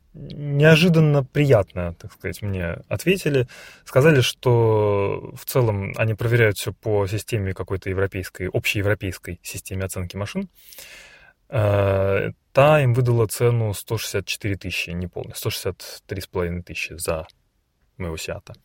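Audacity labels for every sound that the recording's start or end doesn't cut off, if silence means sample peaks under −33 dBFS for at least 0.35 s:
11.520000	17.300000	sound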